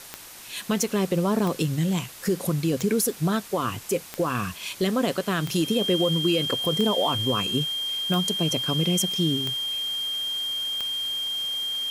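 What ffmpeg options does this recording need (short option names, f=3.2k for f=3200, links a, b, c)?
-af "adeclick=t=4,bandreject=f=3.2k:w=30,afftdn=nr=29:nf=-42"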